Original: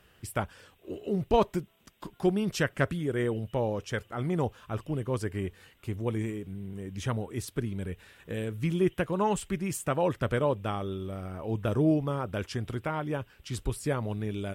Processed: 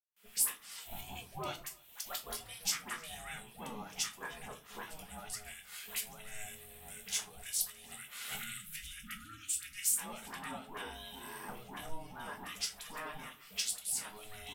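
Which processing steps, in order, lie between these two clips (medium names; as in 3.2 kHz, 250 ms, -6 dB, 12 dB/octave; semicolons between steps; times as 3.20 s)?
recorder AGC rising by 48 dB/s; peaking EQ 220 Hz -12 dB 0.94 oct; phase dispersion highs, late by 129 ms, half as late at 780 Hz; gate with hold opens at -49 dBFS; differentiator; ring modulator 320 Hz; in parallel at -5.5 dB: overload inside the chain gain 34 dB; on the sum: compression 1.5:1, threshold -52 dBFS, peak gain reduction 9.5 dB; delay 310 ms -23 dB; spectral selection erased 8.39–9.98 s, 340–1200 Hz; simulated room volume 170 m³, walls furnished, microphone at 1.3 m; three bands expanded up and down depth 40%; trim +4.5 dB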